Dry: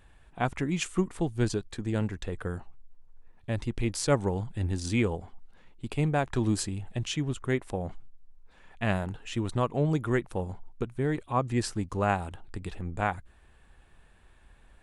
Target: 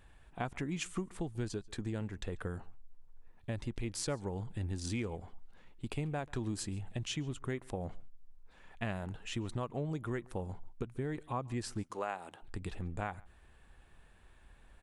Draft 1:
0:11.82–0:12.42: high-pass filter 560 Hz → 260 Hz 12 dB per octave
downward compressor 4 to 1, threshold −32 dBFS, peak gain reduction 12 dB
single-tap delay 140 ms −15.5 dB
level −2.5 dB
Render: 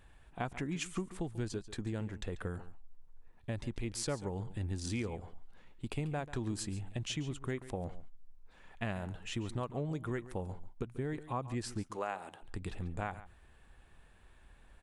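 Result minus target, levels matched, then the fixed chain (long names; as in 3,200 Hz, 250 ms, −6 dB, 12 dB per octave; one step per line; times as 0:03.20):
echo-to-direct +9.5 dB
0:11.82–0:12.42: high-pass filter 560 Hz → 260 Hz 12 dB per octave
downward compressor 4 to 1, threshold −32 dBFS, peak gain reduction 12 dB
single-tap delay 140 ms −25 dB
level −2.5 dB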